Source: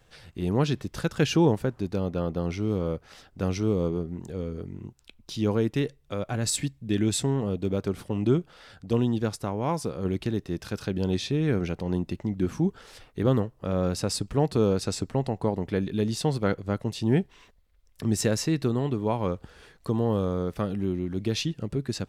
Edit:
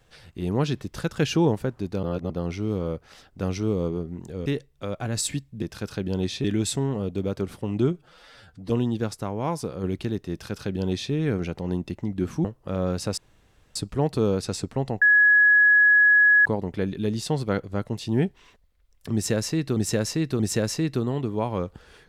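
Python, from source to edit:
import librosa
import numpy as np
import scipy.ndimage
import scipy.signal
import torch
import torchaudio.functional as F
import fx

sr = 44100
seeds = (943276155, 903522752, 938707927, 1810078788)

y = fx.edit(x, sr, fx.reverse_span(start_s=2.03, length_s=0.27),
    fx.cut(start_s=4.46, length_s=1.29),
    fx.stretch_span(start_s=8.4, length_s=0.51, factor=1.5),
    fx.duplicate(start_s=10.52, length_s=0.82, to_s=6.91),
    fx.cut(start_s=12.66, length_s=0.75),
    fx.insert_room_tone(at_s=14.14, length_s=0.58),
    fx.insert_tone(at_s=15.4, length_s=1.44, hz=1680.0, db=-13.0),
    fx.repeat(start_s=18.08, length_s=0.63, count=3), tone=tone)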